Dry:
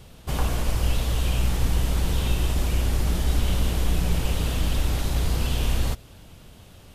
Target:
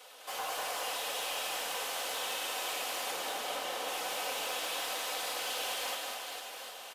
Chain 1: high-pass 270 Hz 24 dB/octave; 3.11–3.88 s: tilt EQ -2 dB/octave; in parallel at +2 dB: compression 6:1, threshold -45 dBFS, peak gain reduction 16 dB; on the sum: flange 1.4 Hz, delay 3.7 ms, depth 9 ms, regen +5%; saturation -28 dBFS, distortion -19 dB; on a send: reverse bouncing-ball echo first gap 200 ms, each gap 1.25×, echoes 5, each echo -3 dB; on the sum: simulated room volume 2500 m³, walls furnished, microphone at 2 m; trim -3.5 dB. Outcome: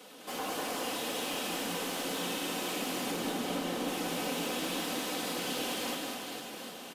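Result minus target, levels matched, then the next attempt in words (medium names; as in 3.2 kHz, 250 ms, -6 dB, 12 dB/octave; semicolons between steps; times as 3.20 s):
250 Hz band +18.5 dB
high-pass 550 Hz 24 dB/octave; 3.11–3.88 s: tilt EQ -2 dB/octave; in parallel at +2 dB: compression 6:1, threshold -45 dBFS, peak gain reduction 15 dB; on the sum: flange 1.4 Hz, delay 3.7 ms, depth 9 ms, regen +5%; saturation -28 dBFS, distortion -21 dB; on a send: reverse bouncing-ball echo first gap 200 ms, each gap 1.25×, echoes 5, each echo -3 dB; on the sum: simulated room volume 2500 m³, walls furnished, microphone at 2 m; trim -3.5 dB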